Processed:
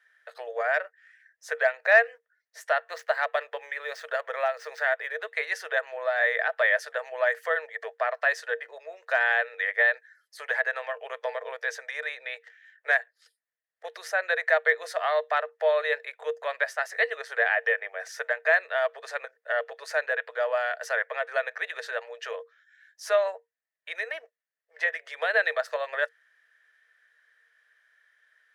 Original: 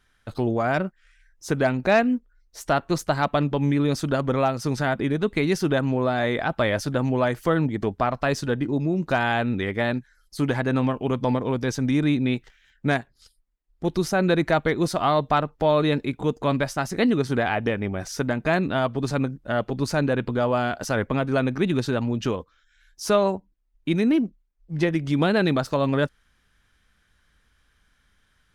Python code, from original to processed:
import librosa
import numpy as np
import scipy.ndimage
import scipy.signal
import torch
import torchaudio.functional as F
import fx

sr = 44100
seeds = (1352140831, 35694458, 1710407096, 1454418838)

y = fx.median_filter(x, sr, points=5, at=(2.88, 5.32))
y = scipy.signal.sosfilt(scipy.signal.cheby1(6, 9, 450.0, 'highpass', fs=sr, output='sos'), y)
y = fx.peak_eq(y, sr, hz=1800.0, db=11.5, octaves=0.25)